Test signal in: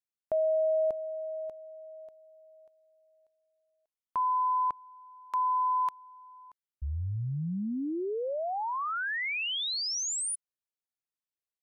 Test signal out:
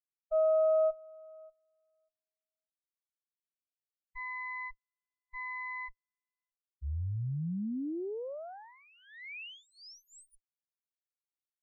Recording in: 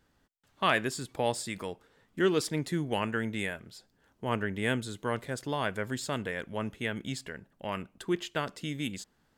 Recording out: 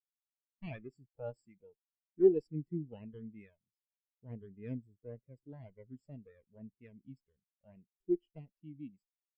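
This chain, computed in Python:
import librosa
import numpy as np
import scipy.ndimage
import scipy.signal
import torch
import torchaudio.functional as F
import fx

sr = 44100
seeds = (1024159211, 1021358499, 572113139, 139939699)

y = fx.lower_of_two(x, sr, delay_ms=0.39)
y = fx.spectral_expand(y, sr, expansion=2.5)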